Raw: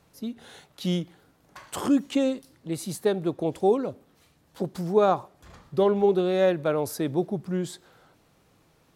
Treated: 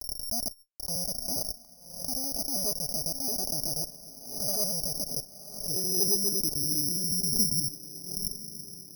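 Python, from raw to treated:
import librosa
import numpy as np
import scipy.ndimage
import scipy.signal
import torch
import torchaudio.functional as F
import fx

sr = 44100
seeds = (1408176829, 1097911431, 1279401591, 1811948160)

p1 = fx.block_reorder(x, sr, ms=80.0, group=8)
p2 = scipy.signal.sosfilt(scipy.signal.butter(4, 3500.0, 'lowpass', fs=sr, output='sos'), p1)
p3 = fx.band_shelf(p2, sr, hz=810.0, db=-12.0, octaves=2.8)
p4 = fx.level_steps(p3, sr, step_db=21)
p5 = fx.schmitt(p4, sr, flips_db=-53.0)
p6 = fx.quant_dither(p5, sr, seeds[0], bits=10, dither='none')
p7 = fx.filter_sweep_lowpass(p6, sr, from_hz=660.0, to_hz=190.0, start_s=4.85, end_s=7.86, q=4.7)
p8 = fx.env_flanger(p7, sr, rest_ms=5.2, full_db=-44.0)
p9 = fx.cheby_harmonics(p8, sr, harmonics=(2,), levels_db=(-13,), full_scale_db=-30.0)
p10 = p9 + fx.echo_diffused(p9, sr, ms=1062, feedback_pct=51, wet_db=-15, dry=0)
p11 = (np.kron(scipy.signal.resample_poly(p10, 1, 8), np.eye(8)[0]) * 8)[:len(p10)]
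p12 = fx.pre_swell(p11, sr, db_per_s=75.0)
y = p12 * 10.0 ** (4.0 / 20.0)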